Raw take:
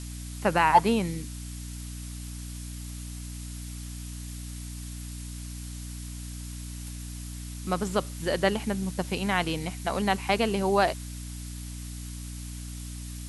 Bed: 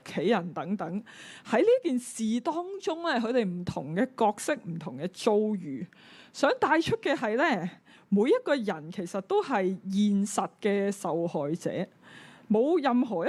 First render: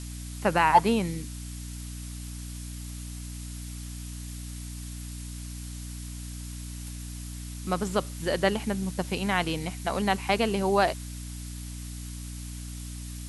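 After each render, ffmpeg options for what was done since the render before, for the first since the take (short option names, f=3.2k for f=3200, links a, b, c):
-af anull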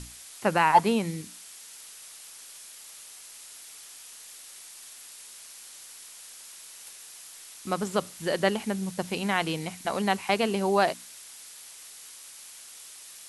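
-af "bandreject=f=60:t=h:w=6,bandreject=f=120:t=h:w=6,bandreject=f=180:t=h:w=6,bandreject=f=240:t=h:w=6,bandreject=f=300:t=h:w=6"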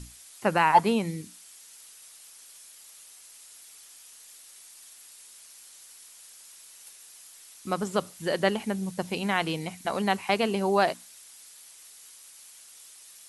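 -af "afftdn=nr=6:nf=-47"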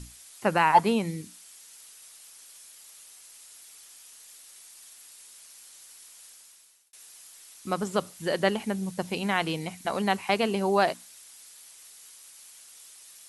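-filter_complex "[0:a]asplit=2[a][b];[a]atrim=end=6.93,asetpts=PTS-STARTPTS,afade=t=out:st=6.27:d=0.66[c];[b]atrim=start=6.93,asetpts=PTS-STARTPTS,afade=t=in:d=0.004:c=hsin[d];[c][d]concat=n=2:v=0:a=1"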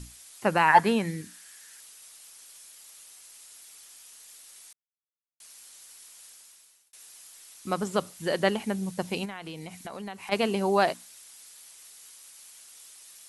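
-filter_complex "[0:a]asettb=1/sr,asplit=3[a][b][c];[a]atrim=end=0.684[d];[b]atrim=start=0.68:end=1.8,asetpts=PTS-STARTPTS,afade=t=in:d=0.004:c=qsin,afade=t=out:st=1.116:d=0.004:c=qsin,equalizer=f=1.7k:t=o:w=0.34:g=14[e];[c]atrim=start=1.796[f];[d][e]acrossfade=d=0.004:c1=hsin:c2=qsin[g];[g][f]acrossfade=d=0.004:c1=qsin:c2=hsin,asplit=3[h][i][j];[h]afade=t=out:st=9.24:d=0.02[k];[i]acompressor=threshold=-37dB:ratio=4:attack=3.2:release=140:knee=1:detection=peak,afade=t=in:st=9.24:d=0.02,afade=t=out:st=10.31:d=0.02[l];[j]afade=t=in:st=10.31:d=0.02[m];[k][l][m]amix=inputs=3:normalize=0,asplit=3[n][o][p];[n]atrim=end=4.73,asetpts=PTS-STARTPTS,afade=t=out:st=4.726:d=0.004:c=hsin[q];[o]atrim=start=4.73:end=5.4,asetpts=PTS-STARTPTS,volume=0[r];[p]atrim=start=5.4,asetpts=PTS-STARTPTS,afade=t=in:d=0.004:c=hsin[s];[q][r][s]concat=n=3:v=0:a=1"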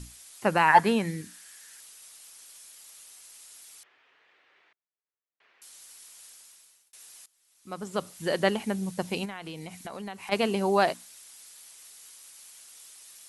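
-filter_complex "[0:a]asettb=1/sr,asplit=3[a][b][c];[a]atrim=end=3.834[d];[b]atrim=start=3.83:end=5.62,asetpts=PTS-STARTPTS,afade=t=in:d=0.004:c=qsin,afade=t=out:st=1.786:d=0.004:c=qsin,highpass=f=120:w=0.5412,highpass=f=120:w=1.3066,equalizer=f=150:t=q:w=4:g=-6,equalizer=f=210:t=q:w=4:g=-10,equalizer=f=410:t=q:w=4:g=5,equalizer=f=1.8k:t=q:w=4:g=3,lowpass=f=2.5k:w=0.5412,lowpass=f=2.5k:w=1.3066[e];[c]atrim=start=5.616[f];[d][e]acrossfade=d=0.004:c1=hsin:c2=qsin[g];[g][f]acrossfade=d=0.004:c1=qsin:c2=hsin,asplit=2[h][i];[h]atrim=end=7.26,asetpts=PTS-STARTPTS,afade=t=out:st=7.256:d=0.004:c=hsin:silence=0.0891251[j];[i]atrim=start=7.26,asetpts=PTS-STARTPTS,afade=t=in:d=0.9:c=qua:silence=0.0891251[k];[j][k]concat=n=2:v=0:a=1"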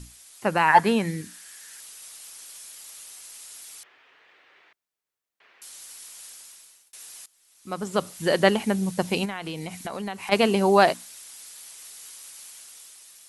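-af "dynaudnorm=f=230:g=7:m=6.5dB"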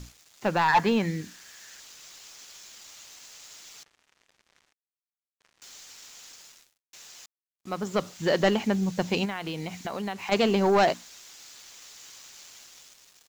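-af "aresample=16000,asoftclip=type=tanh:threshold=-15dB,aresample=44100,acrusher=bits=7:mix=0:aa=0.5"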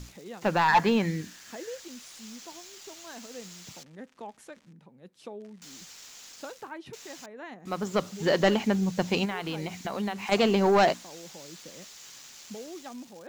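-filter_complex "[1:a]volume=-17.5dB[a];[0:a][a]amix=inputs=2:normalize=0"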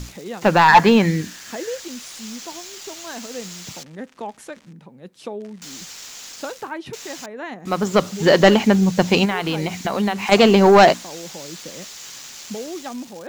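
-af "volume=10.5dB"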